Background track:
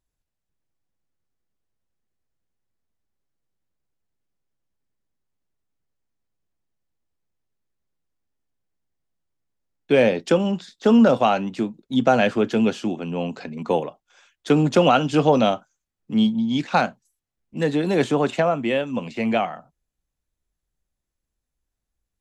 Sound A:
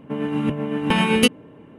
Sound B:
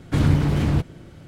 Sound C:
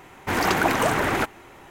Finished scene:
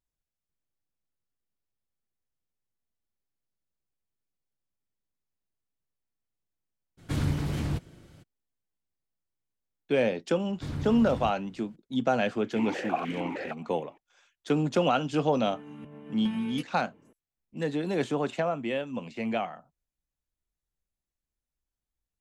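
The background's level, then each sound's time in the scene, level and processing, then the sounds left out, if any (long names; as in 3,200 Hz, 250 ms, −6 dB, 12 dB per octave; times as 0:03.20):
background track −8.5 dB
0:06.97: mix in B −10 dB, fades 0.02 s + high-shelf EQ 3,400 Hz +7.5 dB
0:10.49: mix in B −16.5 dB
0:12.28: mix in C −1 dB + formant filter that steps through the vowels 6.5 Hz
0:15.35: mix in A −14.5 dB + downward compressor 2 to 1, threshold −32 dBFS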